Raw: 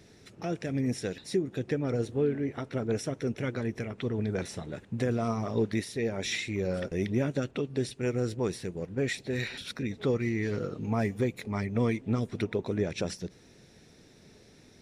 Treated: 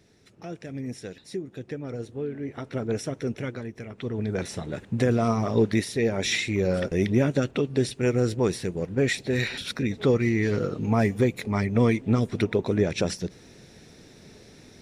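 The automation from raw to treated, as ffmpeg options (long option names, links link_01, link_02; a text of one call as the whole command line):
ffmpeg -i in.wav -af "volume=14dB,afade=type=in:start_time=2.3:duration=0.44:silence=0.473151,afade=type=out:start_time=3.34:duration=0.38:silence=0.421697,afade=type=in:start_time=3.72:duration=1.11:silence=0.251189" out.wav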